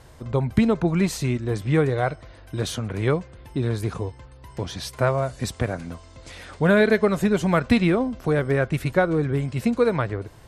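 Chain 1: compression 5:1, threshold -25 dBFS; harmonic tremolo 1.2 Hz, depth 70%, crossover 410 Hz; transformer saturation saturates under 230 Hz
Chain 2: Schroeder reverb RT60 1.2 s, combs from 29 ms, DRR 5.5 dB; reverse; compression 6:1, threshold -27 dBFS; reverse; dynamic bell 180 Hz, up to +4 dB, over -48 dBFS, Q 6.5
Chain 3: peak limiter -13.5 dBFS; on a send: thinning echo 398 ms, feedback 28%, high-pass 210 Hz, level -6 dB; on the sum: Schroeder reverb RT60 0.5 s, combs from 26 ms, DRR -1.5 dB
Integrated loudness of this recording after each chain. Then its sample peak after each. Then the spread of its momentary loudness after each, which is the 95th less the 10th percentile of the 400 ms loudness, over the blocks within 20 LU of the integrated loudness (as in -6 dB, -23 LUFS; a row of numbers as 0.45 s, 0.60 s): -34.5 LUFS, -31.0 LUFS, -21.0 LUFS; -17.5 dBFS, -16.5 dBFS, -5.0 dBFS; 8 LU, 7 LU, 10 LU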